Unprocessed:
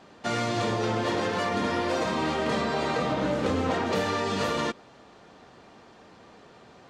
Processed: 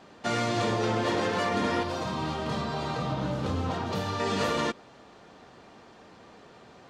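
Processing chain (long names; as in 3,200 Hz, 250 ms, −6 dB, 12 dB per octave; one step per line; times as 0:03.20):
0:01.83–0:04.20: octave-band graphic EQ 125/250/500/2,000/8,000 Hz +6/−5/−7/−9/−6 dB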